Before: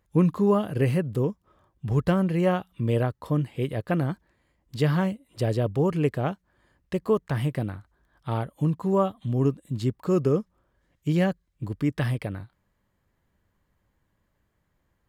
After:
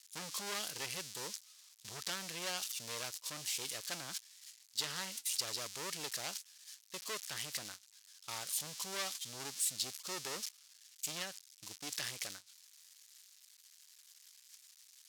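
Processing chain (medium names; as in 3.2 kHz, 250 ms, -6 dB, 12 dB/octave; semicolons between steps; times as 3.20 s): zero-crossing glitches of -25.5 dBFS; gate -33 dBFS, range -19 dB; 11.22–11.71 s: compression 2:1, threshold -29 dBFS, peak gain reduction 5.5 dB; hard clipper -24.5 dBFS, distortion -8 dB; band-pass filter 5.3 kHz, Q 1.3; trim +5 dB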